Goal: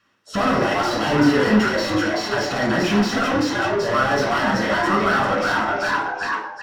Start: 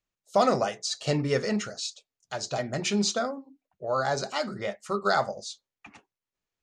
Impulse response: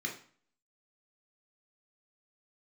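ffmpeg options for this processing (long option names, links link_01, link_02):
-filter_complex "[0:a]asplit=5[link_01][link_02][link_03][link_04][link_05];[link_02]adelay=382,afreqshift=100,volume=-7dB[link_06];[link_03]adelay=764,afreqshift=200,volume=-16.6dB[link_07];[link_04]adelay=1146,afreqshift=300,volume=-26.3dB[link_08];[link_05]adelay=1528,afreqshift=400,volume=-35.9dB[link_09];[link_01][link_06][link_07][link_08][link_09]amix=inputs=5:normalize=0,asplit=2[link_10][link_11];[link_11]highpass=frequency=720:poles=1,volume=38dB,asoftclip=type=tanh:threshold=-11dB[link_12];[link_10][link_12]amix=inputs=2:normalize=0,lowpass=frequency=1400:poles=1,volume=-6dB[link_13];[1:a]atrim=start_sample=2205,asetrate=36162,aresample=44100[link_14];[link_13][link_14]afir=irnorm=-1:irlink=0,volume=-3dB"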